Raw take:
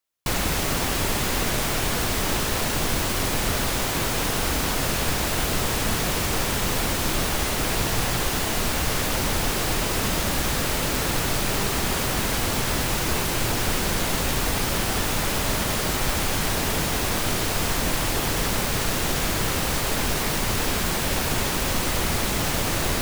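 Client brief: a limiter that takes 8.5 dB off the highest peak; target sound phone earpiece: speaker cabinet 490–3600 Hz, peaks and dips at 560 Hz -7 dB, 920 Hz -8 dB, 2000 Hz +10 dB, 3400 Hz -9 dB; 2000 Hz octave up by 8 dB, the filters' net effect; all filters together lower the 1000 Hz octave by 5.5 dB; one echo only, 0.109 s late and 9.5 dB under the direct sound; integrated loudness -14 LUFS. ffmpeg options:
-af "equalizer=f=1k:t=o:g=-5,equalizer=f=2k:t=o:g=5,alimiter=limit=-18dB:level=0:latency=1,highpass=490,equalizer=f=560:t=q:w=4:g=-7,equalizer=f=920:t=q:w=4:g=-8,equalizer=f=2k:t=q:w=4:g=10,equalizer=f=3.4k:t=q:w=4:g=-9,lowpass=f=3.6k:w=0.5412,lowpass=f=3.6k:w=1.3066,aecho=1:1:109:0.335,volume=13dB"

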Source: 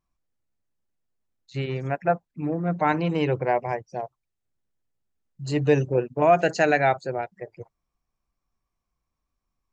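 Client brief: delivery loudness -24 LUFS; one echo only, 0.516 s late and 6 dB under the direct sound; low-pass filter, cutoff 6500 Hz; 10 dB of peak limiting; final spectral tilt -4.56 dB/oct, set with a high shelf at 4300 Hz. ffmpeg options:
-af "lowpass=6.5k,highshelf=f=4.3k:g=-3.5,alimiter=limit=-17.5dB:level=0:latency=1,aecho=1:1:516:0.501,volume=4.5dB"

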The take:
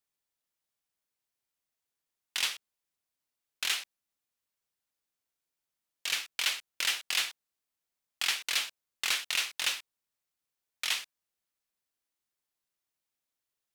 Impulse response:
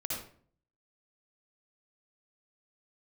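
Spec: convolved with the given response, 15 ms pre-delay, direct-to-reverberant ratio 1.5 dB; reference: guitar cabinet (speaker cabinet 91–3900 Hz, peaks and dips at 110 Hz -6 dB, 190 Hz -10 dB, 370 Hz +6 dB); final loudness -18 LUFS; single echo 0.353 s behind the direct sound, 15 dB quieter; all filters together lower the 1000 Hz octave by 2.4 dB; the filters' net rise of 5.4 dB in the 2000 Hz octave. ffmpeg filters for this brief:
-filter_complex "[0:a]equalizer=f=1k:t=o:g=-7.5,equalizer=f=2k:t=o:g=8.5,aecho=1:1:353:0.178,asplit=2[a][b];[1:a]atrim=start_sample=2205,adelay=15[c];[b][c]afir=irnorm=-1:irlink=0,volume=-4.5dB[d];[a][d]amix=inputs=2:normalize=0,highpass=91,equalizer=f=110:t=q:w=4:g=-6,equalizer=f=190:t=q:w=4:g=-10,equalizer=f=370:t=q:w=4:g=6,lowpass=f=3.9k:w=0.5412,lowpass=f=3.9k:w=1.3066,volume=9.5dB"

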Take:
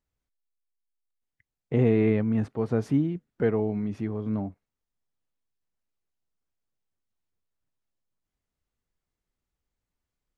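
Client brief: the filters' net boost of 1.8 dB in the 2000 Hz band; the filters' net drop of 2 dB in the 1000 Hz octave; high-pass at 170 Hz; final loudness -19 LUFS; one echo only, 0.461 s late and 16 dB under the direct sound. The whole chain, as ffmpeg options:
-af "highpass=170,equalizer=f=1k:t=o:g=-3.5,equalizer=f=2k:t=o:g=3,aecho=1:1:461:0.158,volume=9dB"

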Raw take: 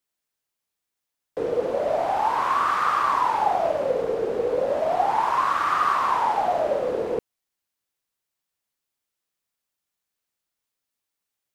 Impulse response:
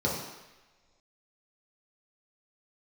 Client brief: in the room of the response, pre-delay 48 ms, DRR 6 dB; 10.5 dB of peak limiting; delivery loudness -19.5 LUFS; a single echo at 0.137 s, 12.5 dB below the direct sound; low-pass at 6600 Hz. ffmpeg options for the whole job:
-filter_complex "[0:a]lowpass=6.6k,alimiter=limit=-20.5dB:level=0:latency=1,aecho=1:1:137:0.237,asplit=2[a][b];[1:a]atrim=start_sample=2205,adelay=48[c];[b][c]afir=irnorm=-1:irlink=0,volume=-16dB[d];[a][d]amix=inputs=2:normalize=0,volume=6.5dB"

